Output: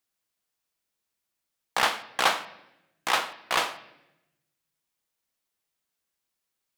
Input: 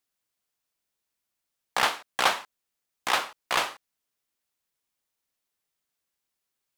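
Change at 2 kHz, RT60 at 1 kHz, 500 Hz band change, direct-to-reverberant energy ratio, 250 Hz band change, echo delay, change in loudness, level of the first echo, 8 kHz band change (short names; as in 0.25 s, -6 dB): +0.5 dB, 0.80 s, +0.5 dB, 10.5 dB, +1.0 dB, none, +0.5 dB, none, 0.0 dB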